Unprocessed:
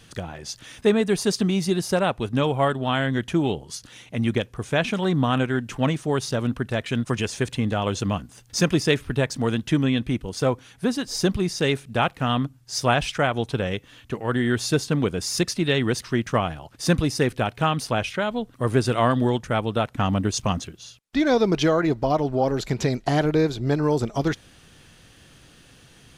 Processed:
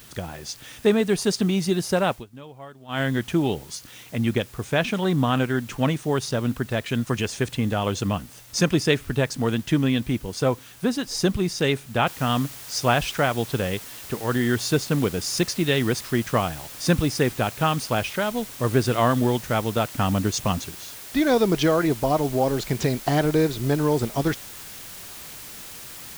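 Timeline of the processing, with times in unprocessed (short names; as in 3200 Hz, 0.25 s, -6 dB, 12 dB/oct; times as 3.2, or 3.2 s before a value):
2.12–3.01 dip -20 dB, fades 0.13 s
12.07 noise floor step -49 dB -40 dB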